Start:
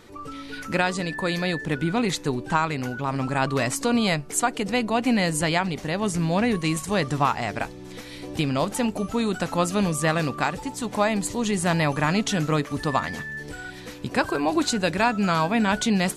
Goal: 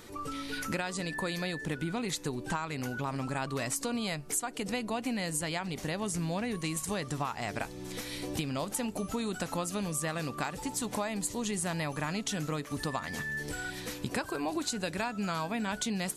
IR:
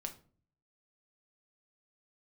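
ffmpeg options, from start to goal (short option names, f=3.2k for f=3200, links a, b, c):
-af "highshelf=f=6.6k:g=10.5,acompressor=threshold=-29dB:ratio=6,volume=-1.5dB"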